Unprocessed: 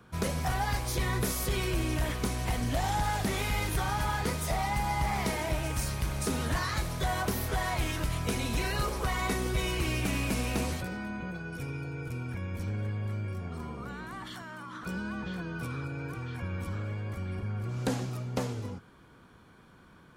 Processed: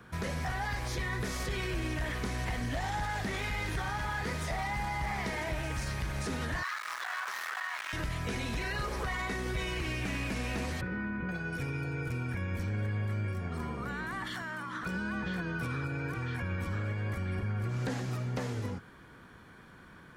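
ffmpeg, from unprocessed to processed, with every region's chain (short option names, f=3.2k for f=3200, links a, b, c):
-filter_complex "[0:a]asettb=1/sr,asplit=3[a][b][c];[a]atrim=end=6.634[d];[b]atrim=start=6.63:end=7.93,asetpts=PTS-STARTPTS,afade=t=in:d=0.004:c=qsin,afade=t=out:st=1.296:d=0.004:c=qsin,acrusher=bits=4:dc=4:mix=0:aa=0.000001,highpass=f=1.2k:t=q:w=2.6[e];[c]atrim=start=7.926[f];[d][e]acrossfade=d=0.004:c1=hsin:c2=qsin[g];[g][f]acrossfade=d=0.004:c1=qsin:c2=hsin,asettb=1/sr,asplit=3[h][i][j];[h]atrim=end=10.814[k];[i]atrim=start=10.81:end=11.29,asetpts=PTS-STARTPTS,afade=t=in:d=0.004:c=qsin,afade=t=out:st=0.476:d=0.004:c=qsin,lowpass=1.8k,equalizer=f=700:w=3.6:g=-14[l];[j]atrim=start=11.286[m];[k][l]acrossfade=d=0.004:c1=hsin:c2=qsin[n];[n][m]acrossfade=d=0.004:c1=qsin:c2=hsin,acrossover=split=7300[o][p];[p]acompressor=threshold=-54dB:ratio=4:attack=1:release=60[q];[o][q]amix=inputs=2:normalize=0,equalizer=f=1.8k:w=2.8:g=7.5,alimiter=level_in=4.5dB:limit=-24dB:level=0:latency=1:release=102,volume=-4.5dB,volume=2dB"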